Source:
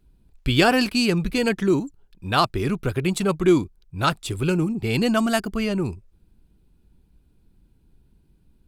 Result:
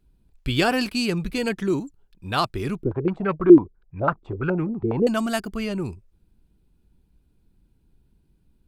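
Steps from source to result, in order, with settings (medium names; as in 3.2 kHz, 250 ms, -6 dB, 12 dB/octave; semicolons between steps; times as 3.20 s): 2.83–5.07 s: step-sequenced low-pass 12 Hz 350–1900 Hz; trim -3.5 dB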